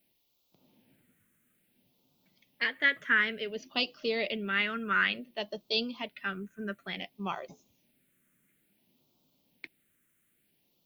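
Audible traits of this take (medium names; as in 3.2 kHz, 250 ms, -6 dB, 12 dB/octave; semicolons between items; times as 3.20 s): a quantiser's noise floor 12-bit, dither triangular; phasing stages 4, 0.57 Hz, lowest notch 800–1700 Hz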